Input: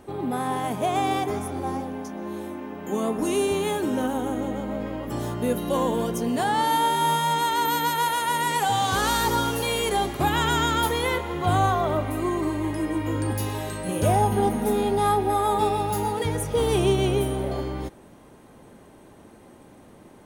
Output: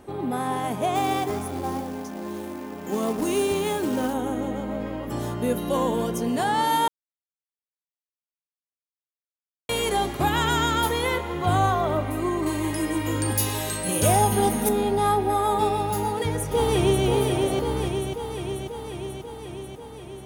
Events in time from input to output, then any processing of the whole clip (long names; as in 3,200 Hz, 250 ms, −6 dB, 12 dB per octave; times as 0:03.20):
0:00.95–0:04.14: floating-point word with a short mantissa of 2 bits
0:06.88–0:09.69: silence
0:12.46–0:14.69: high-shelf EQ 2,700 Hz +11.5 dB
0:15.97–0:17.05: delay throw 540 ms, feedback 70%, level −4 dB